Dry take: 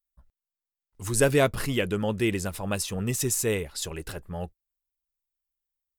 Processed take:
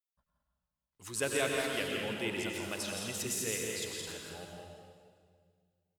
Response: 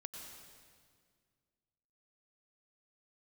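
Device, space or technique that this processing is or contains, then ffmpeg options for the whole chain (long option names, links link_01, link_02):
stadium PA: -filter_complex "[0:a]highpass=frequency=240:poles=1,equalizer=frequency=3300:width_type=o:width=2.1:gain=7,aecho=1:1:169.1|212.8:0.501|0.398[link_01];[1:a]atrim=start_sample=2205[link_02];[link_01][link_02]afir=irnorm=-1:irlink=0,volume=-7dB"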